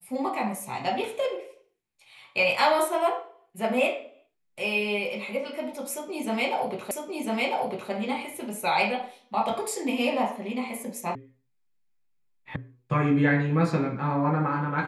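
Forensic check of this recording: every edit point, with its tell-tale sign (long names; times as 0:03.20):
0:06.91: the same again, the last 1 s
0:11.15: cut off before it has died away
0:12.56: cut off before it has died away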